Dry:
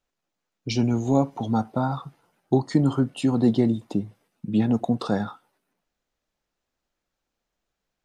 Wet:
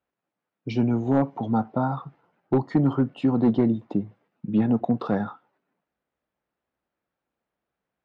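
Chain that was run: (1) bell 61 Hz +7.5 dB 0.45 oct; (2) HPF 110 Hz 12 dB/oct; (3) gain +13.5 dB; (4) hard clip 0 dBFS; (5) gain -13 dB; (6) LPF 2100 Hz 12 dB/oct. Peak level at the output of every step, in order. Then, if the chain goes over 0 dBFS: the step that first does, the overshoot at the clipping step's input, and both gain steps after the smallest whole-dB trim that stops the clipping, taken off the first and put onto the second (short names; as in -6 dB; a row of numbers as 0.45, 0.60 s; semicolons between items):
-8.0, -6.5, +7.0, 0.0, -13.0, -12.5 dBFS; step 3, 7.0 dB; step 3 +6.5 dB, step 5 -6 dB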